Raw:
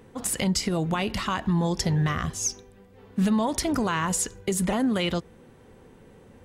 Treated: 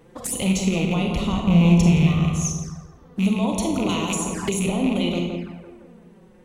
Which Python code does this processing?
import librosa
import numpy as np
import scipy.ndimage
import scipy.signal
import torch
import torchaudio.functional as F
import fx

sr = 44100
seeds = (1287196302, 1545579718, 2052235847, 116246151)

y = fx.rattle_buzz(x, sr, strikes_db=-25.0, level_db=-18.0)
y = fx.rider(y, sr, range_db=10, speed_s=2.0)
y = fx.low_shelf(y, sr, hz=320.0, db=10.0, at=(1.16, 1.89))
y = np.clip(y, -10.0 ** (-14.0 / 20.0), 10.0 ** (-14.0 / 20.0))
y = fx.echo_filtered(y, sr, ms=169, feedback_pct=57, hz=1900.0, wet_db=-4.0)
y = fx.rev_schroeder(y, sr, rt60_s=0.58, comb_ms=31, drr_db=3.5)
y = fx.env_flanger(y, sr, rest_ms=7.0, full_db=-22.0)
y = fx.peak_eq(y, sr, hz=2400.0, db=-6.0, octaves=1.0, at=(2.5, 3.2))
y = fx.band_squash(y, sr, depth_pct=100, at=(3.89, 4.67))